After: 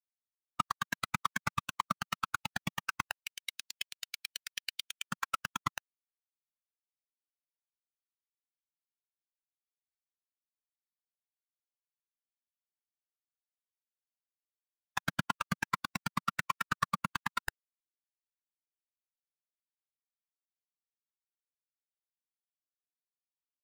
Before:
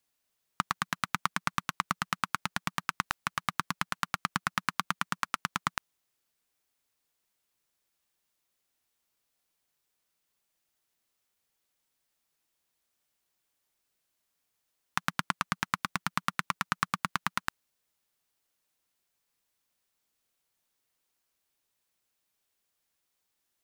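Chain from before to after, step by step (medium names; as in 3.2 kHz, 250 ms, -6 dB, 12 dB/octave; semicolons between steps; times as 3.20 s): expander on every frequency bin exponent 3; 3.20–5.05 s: inverse Chebyshev high-pass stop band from 1.2 kHz, stop band 40 dB; waveshaping leveller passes 3; trim -3.5 dB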